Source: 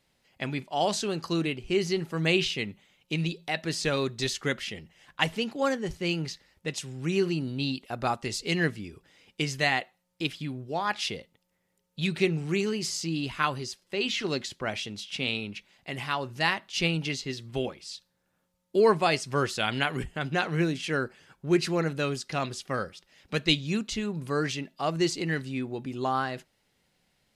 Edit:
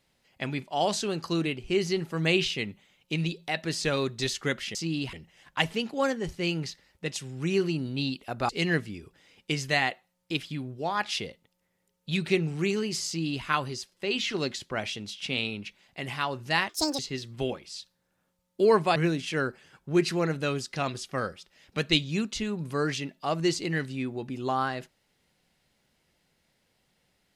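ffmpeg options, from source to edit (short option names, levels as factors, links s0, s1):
-filter_complex "[0:a]asplit=7[s0][s1][s2][s3][s4][s5][s6];[s0]atrim=end=4.752[s7];[s1]atrim=start=12.968:end=13.352[s8];[s2]atrim=start=4.748:end=8.112[s9];[s3]atrim=start=8.388:end=16.594[s10];[s4]atrim=start=16.59:end=17.14,asetpts=PTS-STARTPTS,asetrate=81585,aresample=44100[s11];[s5]atrim=start=17.136:end=19.112[s12];[s6]atrim=start=20.518[s13];[s7][s8]acrossfade=d=0.004:c1=hsin:c2=hsin[s14];[s14][s9]acrossfade=d=0.004:c1=hsin:c2=hsin[s15];[s15][s10]acrossfade=d=0.004:c1=hsin:c2=hsin[s16];[s16][s11]acrossfade=d=0.004:c1=hsin:c2=hsin[s17];[s17][s12]acrossfade=d=0.004:c1=hsin:c2=hsin[s18];[s18][s13]acrossfade=d=0.004:c1=hsin:c2=hsin"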